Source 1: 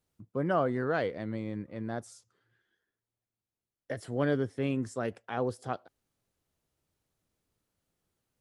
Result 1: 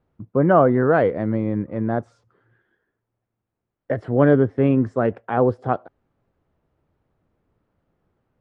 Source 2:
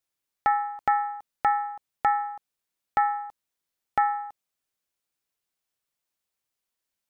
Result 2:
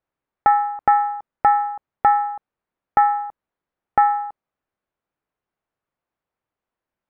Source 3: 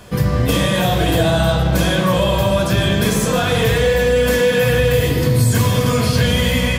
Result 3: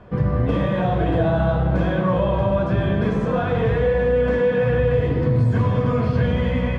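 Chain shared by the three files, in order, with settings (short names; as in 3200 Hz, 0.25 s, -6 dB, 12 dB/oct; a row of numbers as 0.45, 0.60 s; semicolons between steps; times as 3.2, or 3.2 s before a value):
LPF 1400 Hz 12 dB/oct; match loudness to -20 LUFS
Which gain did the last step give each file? +13.5, +8.5, -3.5 dB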